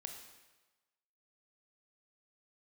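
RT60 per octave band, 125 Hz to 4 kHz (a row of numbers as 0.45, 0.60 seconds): 1.0, 1.0, 1.2, 1.2, 1.1, 1.1 seconds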